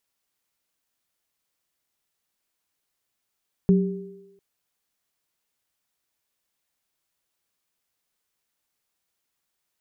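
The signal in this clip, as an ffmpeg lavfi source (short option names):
-f lavfi -i "aevalsrc='0.251*pow(10,-3*t/0.78)*sin(2*PI*185*t)+0.1*pow(10,-3*t/1.17)*sin(2*PI*395*t)':d=0.7:s=44100"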